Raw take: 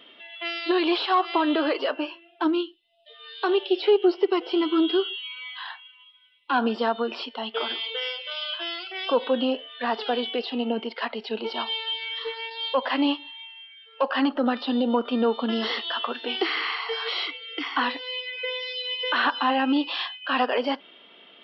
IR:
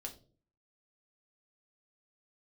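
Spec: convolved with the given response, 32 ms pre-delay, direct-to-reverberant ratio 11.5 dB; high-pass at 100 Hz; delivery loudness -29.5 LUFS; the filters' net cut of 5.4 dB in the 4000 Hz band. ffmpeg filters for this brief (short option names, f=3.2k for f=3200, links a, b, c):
-filter_complex "[0:a]highpass=100,equalizer=f=4k:t=o:g=-8,asplit=2[a][b];[1:a]atrim=start_sample=2205,adelay=32[c];[b][c]afir=irnorm=-1:irlink=0,volume=-8.5dB[d];[a][d]amix=inputs=2:normalize=0,volume=-3dB"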